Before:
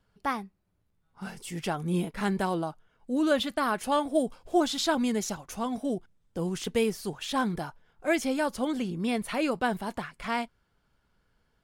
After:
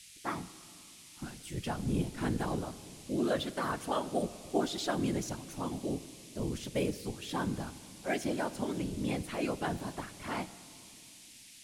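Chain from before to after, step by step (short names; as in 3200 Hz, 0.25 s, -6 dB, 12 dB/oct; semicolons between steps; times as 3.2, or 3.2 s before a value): bell 110 Hz +10.5 dB 1.3 oct; whisperiser; band noise 2100–11000 Hz -47 dBFS; on a send: reverb RT60 2.7 s, pre-delay 6 ms, DRR 15 dB; on the sum: gain -7.5 dB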